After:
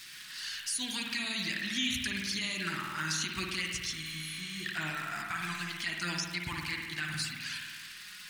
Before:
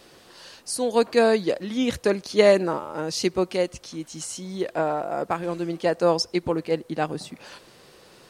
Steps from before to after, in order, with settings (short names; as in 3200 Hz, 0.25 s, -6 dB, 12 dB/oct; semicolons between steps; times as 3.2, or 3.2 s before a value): crackle 150/s -39 dBFS; EQ curve 140 Hz 0 dB, 320 Hz -9 dB, 490 Hz -29 dB, 1700 Hz +15 dB, 2500 Hz +14 dB; limiter -16 dBFS, peak gain reduction 18 dB; envelope flanger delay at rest 9.6 ms, full sweep at -23 dBFS; spring tank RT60 1.5 s, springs 51 ms, chirp 55 ms, DRR 0.5 dB; spectral repair 4.06–4.63, 710–10000 Hz before; gain -5 dB